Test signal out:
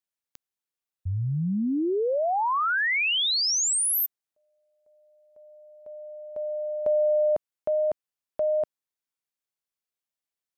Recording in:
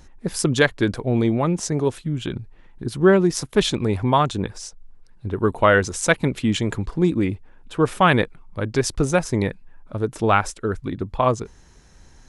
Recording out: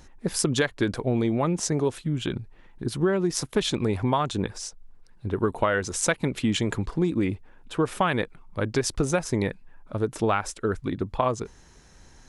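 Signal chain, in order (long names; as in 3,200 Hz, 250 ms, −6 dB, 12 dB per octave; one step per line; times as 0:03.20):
low-shelf EQ 150 Hz −4 dB
downward compressor 10 to 1, threshold −19 dBFS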